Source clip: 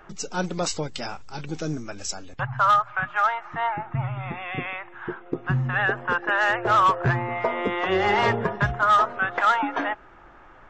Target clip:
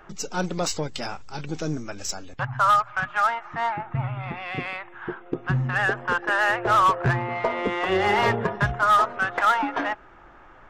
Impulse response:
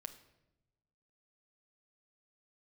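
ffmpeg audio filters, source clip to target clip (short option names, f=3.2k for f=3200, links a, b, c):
-af "aeval=exprs='0.251*(cos(1*acos(clip(val(0)/0.251,-1,1)))-cos(1*PI/2))+0.00794*(cos(8*acos(clip(val(0)/0.251,-1,1)))-cos(8*PI/2))':c=same"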